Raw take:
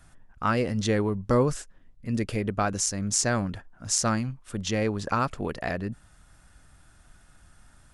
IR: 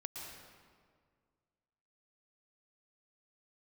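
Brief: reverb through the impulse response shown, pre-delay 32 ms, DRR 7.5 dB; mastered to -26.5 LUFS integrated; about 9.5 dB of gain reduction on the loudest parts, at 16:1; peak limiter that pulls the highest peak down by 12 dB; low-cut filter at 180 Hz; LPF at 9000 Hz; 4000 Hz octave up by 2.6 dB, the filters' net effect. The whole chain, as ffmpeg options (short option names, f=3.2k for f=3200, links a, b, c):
-filter_complex "[0:a]highpass=180,lowpass=9k,equalizer=f=4k:t=o:g=4,acompressor=threshold=-28dB:ratio=16,alimiter=level_in=2.5dB:limit=-24dB:level=0:latency=1,volume=-2.5dB,asplit=2[a][b];[1:a]atrim=start_sample=2205,adelay=32[c];[b][c]afir=irnorm=-1:irlink=0,volume=-6dB[d];[a][d]amix=inputs=2:normalize=0,volume=11.5dB"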